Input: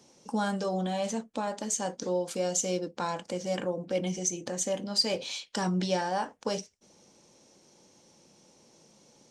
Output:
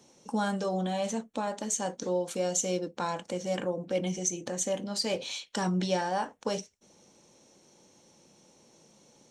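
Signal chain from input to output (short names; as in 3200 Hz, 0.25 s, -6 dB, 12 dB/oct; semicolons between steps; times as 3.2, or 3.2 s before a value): notch 4900 Hz, Q 8.8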